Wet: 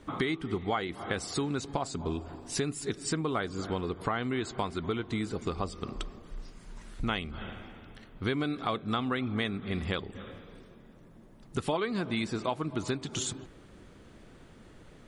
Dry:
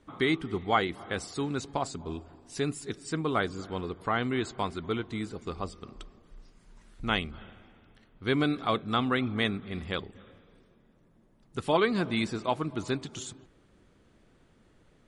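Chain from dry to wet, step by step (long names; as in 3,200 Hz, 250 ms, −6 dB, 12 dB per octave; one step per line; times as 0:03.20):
downward compressor 5 to 1, threshold −38 dBFS, peak gain reduction 16.5 dB
level +9 dB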